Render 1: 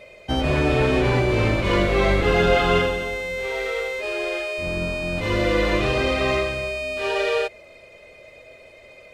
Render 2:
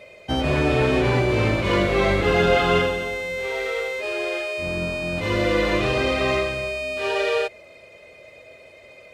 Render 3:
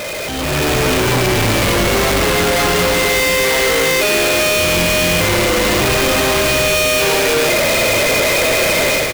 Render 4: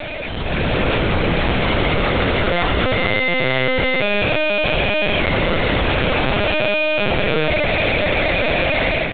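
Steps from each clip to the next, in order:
HPF 61 Hz
infinite clipping; AGC gain up to 10 dB; frequency-shifting echo 0.189 s, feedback 64%, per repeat -120 Hz, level -10.5 dB; gain -2 dB
LPC vocoder at 8 kHz pitch kept; gain -2.5 dB

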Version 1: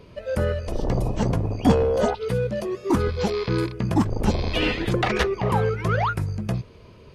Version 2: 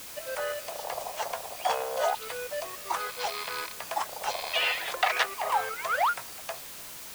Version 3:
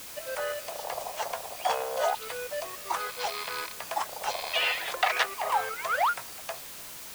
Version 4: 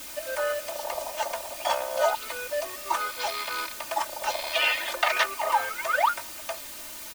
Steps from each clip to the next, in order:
elliptic band-pass 670–9200 Hz, stop band 40 dB; added noise white -43 dBFS
nothing audible
comb 3.3 ms, depth 93%

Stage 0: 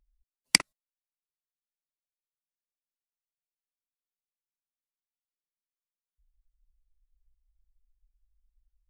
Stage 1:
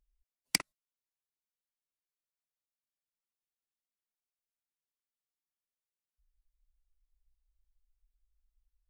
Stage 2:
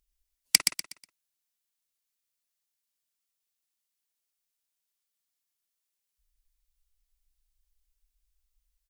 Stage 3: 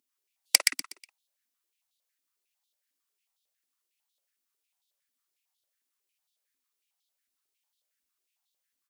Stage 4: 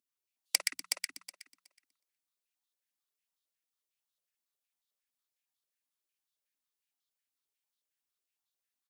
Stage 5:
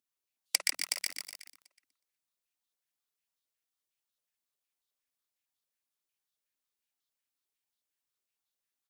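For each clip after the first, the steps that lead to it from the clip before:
overloaded stage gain 9 dB; gain -5 dB
high shelf 2100 Hz +12 dB; on a send: feedback echo 0.122 s, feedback 32%, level -6 dB; on the sum: gain -1.5 dB
stepped high-pass 11 Hz 260–3600 Hz
notches 60/120/180 Hz; on a send: feedback echo 0.37 s, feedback 16%, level -5 dB; on the sum: gain -8.5 dB
lo-fi delay 0.144 s, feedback 55%, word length 7-bit, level -4 dB

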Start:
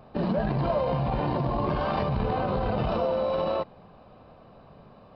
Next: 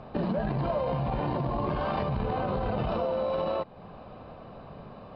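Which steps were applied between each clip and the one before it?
LPF 4700 Hz 12 dB/oct; compressor 2:1, threshold -39 dBFS, peak gain reduction 9.5 dB; gain +6 dB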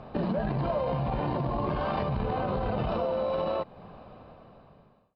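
ending faded out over 1.46 s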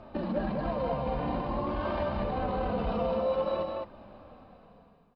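flange 0.52 Hz, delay 3.2 ms, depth 1.1 ms, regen -24%; on a send: loudspeakers at several distances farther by 51 m -12 dB, 72 m -3 dB

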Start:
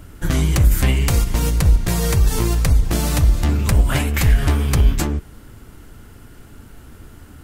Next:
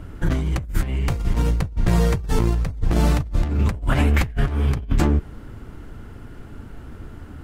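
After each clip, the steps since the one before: LPF 1700 Hz 6 dB/oct; negative-ratio compressor -19 dBFS, ratio -0.5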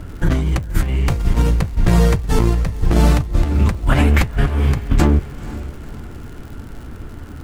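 crackle 120/s -37 dBFS; diffused feedback echo 0.503 s, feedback 43%, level -16 dB; gain +4.5 dB

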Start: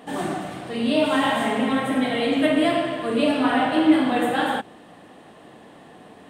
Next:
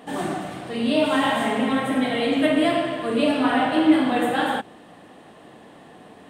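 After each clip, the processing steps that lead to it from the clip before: nothing audible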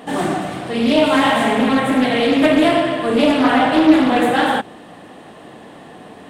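in parallel at -8 dB: hard clip -22 dBFS, distortion -7 dB; on the sum: Doppler distortion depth 0.28 ms; gain +4.5 dB

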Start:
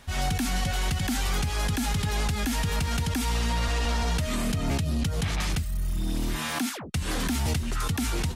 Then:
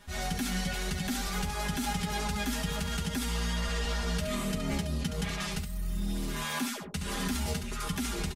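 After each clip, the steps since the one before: comb 4.9 ms, depth 87%; early reflections 11 ms -6 dB, 70 ms -8 dB; gain -7.5 dB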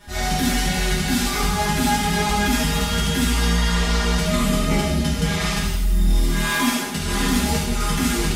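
non-linear reverb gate 0.37 s falling, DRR -6.5 dB; gain +4.5 dB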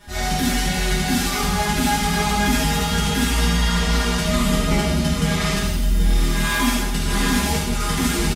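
echo 0.783 s -8 dB

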